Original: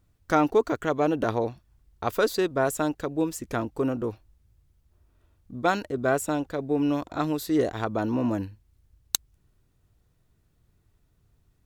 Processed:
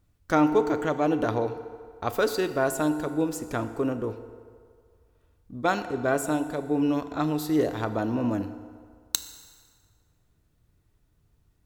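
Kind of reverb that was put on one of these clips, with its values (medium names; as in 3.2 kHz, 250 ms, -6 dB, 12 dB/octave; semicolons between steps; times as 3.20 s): FDN reverb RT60 2 s, low-frequency decay 0.75×, high-frequency decay 0.7×, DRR 9.5 dB; trim -1 dB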